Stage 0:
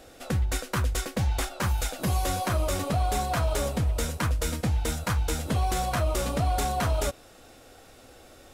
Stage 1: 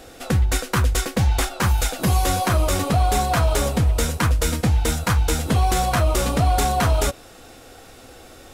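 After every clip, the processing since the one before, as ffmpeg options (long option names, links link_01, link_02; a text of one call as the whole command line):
ffmpeg -i in.wav -af "bandreject=frequency=590:width=12,volume=7.5dB" out.wav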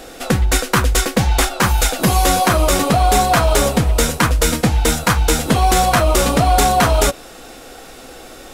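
ffmpeg -i in.wav -af "equalizer=frequency=88:width=1.7:gain=-12,volume=7.5dB" out.wav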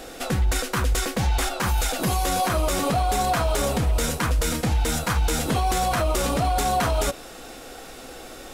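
ffmpeg -i in.wav -af "alimiter=limit=-11.5dB:level=0:latency=1:release=40,volume=-3dB" out.wav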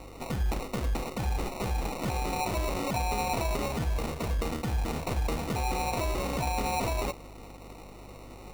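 ffmpeg -i in.wav -af "bandreject=frequency=84.86:width_type=h:width=4,bandreject=frequency=169.72:width_type=h:width=4,bandreject=frequency=254.58:width_type=h:width=4,bandreject=frequency=339.44:width_type=h:width=4,bandreject=frequency=424.3:width_type=h:width=4,bandreject=frequency=509.16:width_type=h:width=4,bandreject=frequency=594.02:width_type=h:width=4,bandreject=frequency=678.88:width_type=h:width=4,bandreject=frequency=763.74:width_type=h:width=4,bandreject=frequency=848.6:width_type=h:width=4,bandreject=frequency=933.46:width_type=h:width=4,bandreject=frequency=1018.32:width_type=h:width=4,bandreject=frequency=1103.18:width_type=h:width=4,bandreject=frequency=1188.04:width_type=h:width=4,bandreject=frequency=1272.9:width_type=h:width=4,bandreject=frequency=1357.76:width_type=h:width=4,bandreject=frequency=1442.62:width_type=h:width=4,bandreject=frequency=1527.48:width_type=h:width=4,bandreject=frequency=1612.34:width_type=h:width=4,bandreject=frequency=1697.2:width_type=h:width=4,bandreject=frequency=1782.06:width_type=h:width=4,bandreject=frequency=1866.92:width_type=h:width=4,bandreject=frequency=1951.78:width_type=h:width=4,bandreject=frequency=2036.64:width_type=h:width=4,bandreject=frequency=2121.5:width_type=h:width=4,bandreject=frequency=2206.36:width_type=h:width=4,bandreject=frequency=2291.22:width_type=h:width=4,bandreject=frequency=2376.08:width_type=h:width=4,bandreject=frequency=2460.94:width_type=h:width=4,bandreject=frequency=2545.8:width_type=h:width=4,bandreject=frequency=2630.66:width_type=h:width=4,bandreject=frequency=2715.52:width_type=h:width=4,acrusher=samples=27:mix=1:aa=0.000001,aeval=exprs='val(0)+0.00891*(sin(2*PI*50*n/s)+sin(2*PI*2*50*n/s)/2+sin(2*PI*3*50*n/s)/3+sin(2*PI*4*50*n/s)/4+sin(2*PI*5*50*n/s)/5)':channel_layout=same,volume=-7.5dB" out.wav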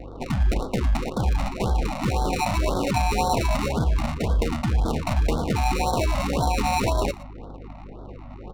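ffmpeg -i in.wav -af "adynamicsmooth=sensitivity=8:basefreq=760,aecho=1:1:118:0.112,afftfilt=real='re*(1-between(b*sr/1024,370*pow(2300/370,0.5+0.5*sin(2*PI*1.9*pts/sr))/1.41,370*pow(2300/370,0.5+0.5*sin(2*PI*1.9*pts/sr))*1.41))':imag='im*(1-between(b*sr/1024,370*pow(2300/370,0.5+0.5*sin(2*PI*1.9*pts/sr))/1.41,370*pow(2300/370,0.5+0.5*sin(2*PI*1.9*pts/sr))*1.41))':win_size=1024:overlap=0.75,volume=8dB" out.wav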